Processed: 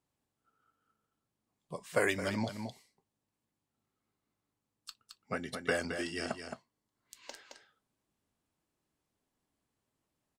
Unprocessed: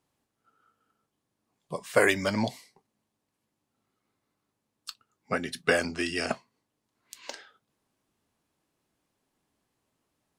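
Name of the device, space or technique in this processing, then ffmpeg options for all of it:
ducked delay: -filter_complex "[0:a]asplit=3[link_01][link_02][link_03];[link_02]adelay=218,volume=-6dB[link_04];[link_03]apad=whole_len=467408[link_05];[link_04][link_05]sidechaincompress=threshold=-28dB:ratio=8:attack=26:release=333[link_06];[link_01][link_06]amix=inputs=2:normalize=0,equalizer=frequency=7700:width=5.3:gain=2.5,asettb=1/sr,asplit=3[link_07][link_08][link_09];[link_07]atrim=end=5.404[link_10];[link_08]atrim=start=5.4:end=7.14,asetpts=PTS-STARTPTS,afade=type=in:duration=0.004:curve=qsin,afade=type=out:start_time=1.736:duration=0.004:curve=qsin,bandreject=frequency=2500:width=9.3[link_11];[link_09]atrim=start=7.136[link_12];[link_10][link_11]acrossfade=duration=0.004:curve1=hsin:curve2=qsin[link_13];[link_13][link_12]acrossfade=duration=0.004:curve1=qsin:curve2=hsin,lowshelf=frequency=140:gain=5,volume=-8dB"

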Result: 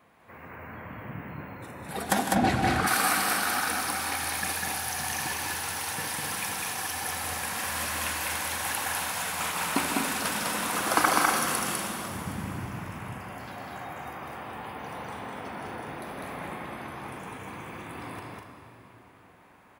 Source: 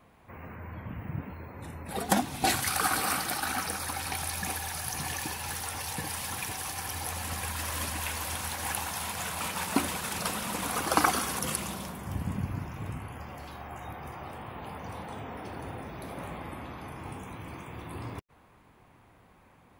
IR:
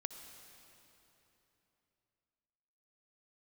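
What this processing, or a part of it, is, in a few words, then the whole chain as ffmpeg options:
stadium PA: -filter_complex "[0:a]highpass=frequency=200:poles=1,equalizer=frequency=1700:width_type=o:width=0.72:gain=3.5,aecho=1:1:154.5|201.2|242:0.251|0.794|0.398[link_01];[1:a]atrim=start_sample=2205[link_02];[link_01][link_02]afir=irnorm=-1:irlink=0,asplit=3[link_03][link_04][link_05];[link_03]afade=type=out:start_time=2.34:duration=0.02[link_06];[link_04]aemphasis=mode=reproduction:type=riaa,afade=type=in:start_time=2.34:duration=0.02,afade=type=out:start_time=2.86:duration=0.02[link_07];[link_05]afade=type=in:start_time=2.86:duration=0.02[link_08];[link_06][link_07][link_08]amix=inputs=3:normalize=0,volume=2.5dB"

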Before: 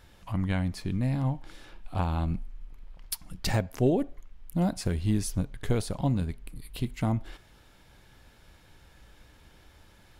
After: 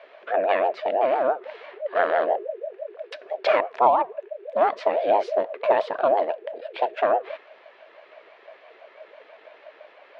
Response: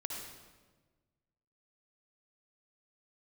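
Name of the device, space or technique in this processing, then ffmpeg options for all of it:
voice changer toy: -af "aeval=exprs='val(0)*sin(2*PI*500*n/s+500*0.25/6*sin(2*PI*6*n/s))':channel_layout=same,highpass=600,equalizer=frequency=640:width_type=q:width=4:gain=10,equalizer=frequency=1000:width_type=q:width=4:gain=4,equalizer=frequency=1700:width_type=q:width=4:gain=8,equalizer=frequency=2400:width_type=q:width=4:gain=5,lowpass=frequency=3500:width=0.5412,lowpass=frequency=3500:width=1.3066,volume=7.5dB"

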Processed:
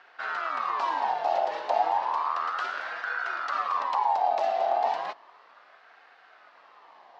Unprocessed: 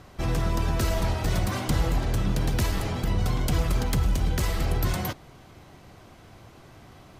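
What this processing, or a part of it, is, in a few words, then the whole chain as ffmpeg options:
voice changer toy: -af "aeval=exprs='val(0)*sin(2*PI*1100*n/s+1100*0.35/0.33*sin(2*PI*0.33*n/s))':channel_layout=same,highpass=540,equalizer=frequency=700:width_type=q:width=4:gain=5,equalizer=frequency=1400:width_type=q:width=4:gain=-6,equalizer=frequency=2300:width_type=q:width=4:gain=-5,equalizer=frequency=3400:width_type=q:width=4:gain=-4,lowpass=frequency=4200:width=0.5412,lowpass=frequency=4200:width=1.3066"

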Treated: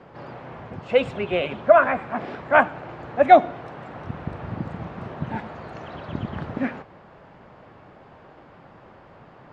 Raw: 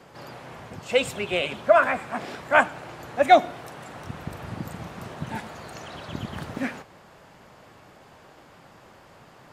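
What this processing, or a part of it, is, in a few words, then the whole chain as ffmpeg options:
phone in a pocket: -af "lowpass=3700,highshelf=frequency=2400:gain=-11,volume=4dB"

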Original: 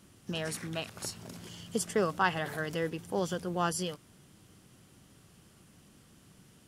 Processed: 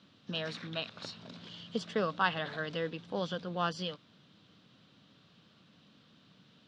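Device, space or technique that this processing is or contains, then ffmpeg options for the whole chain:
kitchen radio: -af "highpass=170,equalizer=frequency=370:width_type=q:width=4:gain=-9,equalizer=frequency=810:width_type=q:width=4:gain=-5,equalizer=frequency=2000:width_type=q:width=4:gain=-4,equalizer=frequency=3800:width_type=q:width=4:gain=9,lowpass=frequency=4400:width=0.5412,lowpass=frequency=4400:width=1.3066"

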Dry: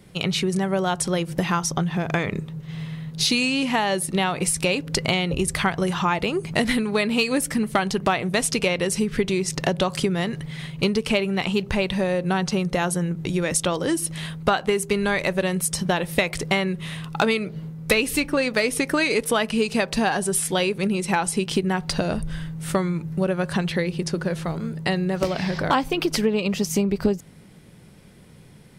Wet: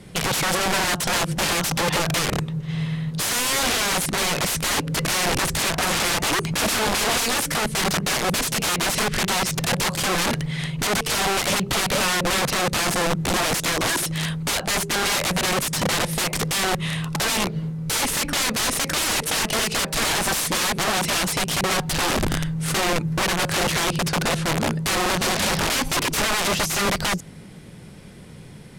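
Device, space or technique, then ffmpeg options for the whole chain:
overflowing digital effects unit: -af "aeval=exprs='(mod(14.1*val(0)+1,2)-1)/14.1':channel_layout=same,lowpass=12000,volume=6.5dB"

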